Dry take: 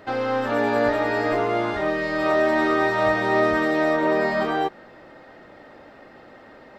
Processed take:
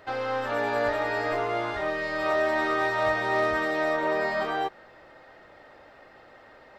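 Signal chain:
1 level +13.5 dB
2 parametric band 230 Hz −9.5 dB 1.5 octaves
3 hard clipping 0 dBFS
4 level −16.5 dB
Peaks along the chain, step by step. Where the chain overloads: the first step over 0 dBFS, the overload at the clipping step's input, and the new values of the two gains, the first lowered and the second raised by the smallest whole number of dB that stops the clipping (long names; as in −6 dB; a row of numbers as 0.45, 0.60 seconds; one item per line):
+5.0, +3.0, 0.0, −16.5 dBFS
step 1, 3.0 dB
step 1 +10.5 dB, step 4 −13.5 dB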